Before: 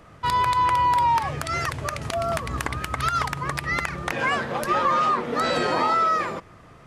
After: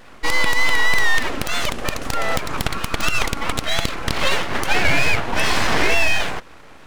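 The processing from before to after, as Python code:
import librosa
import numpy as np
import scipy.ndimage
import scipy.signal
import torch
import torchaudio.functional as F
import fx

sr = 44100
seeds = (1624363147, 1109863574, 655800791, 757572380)

y = scipy.signal.sosfilt(scipy.signal.butter(2, 85.0, 'highpass', fs=sr, output='sos'), x)
y = np.abs(y)
y = fx.vibrato(y, sr, rate_hz=3.4, depth_cents=43.0)
y = y * librosa.db_to_amplitude(7.5)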